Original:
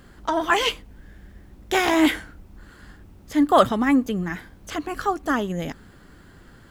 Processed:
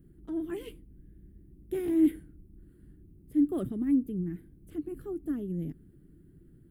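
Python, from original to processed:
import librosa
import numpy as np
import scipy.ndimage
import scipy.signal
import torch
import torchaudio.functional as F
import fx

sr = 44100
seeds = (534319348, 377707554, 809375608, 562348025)

y = fx.curve_eq(x, sr, hz=(110.0, 150.0, 220.0, 340.0, 520.0, 930.0, 1800.0, 2800.0, 6400.0, 9400.0), db=(0, 7, -2, 5, -14, -28, -21, -21, -30, -6))
y = y * librosa.db_to_amplitude(-8.0)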